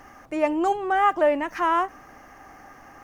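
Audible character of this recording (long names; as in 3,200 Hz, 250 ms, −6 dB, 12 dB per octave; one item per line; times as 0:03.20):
background noise floor −49 dBFS
spectral slope −2.0 dB per octave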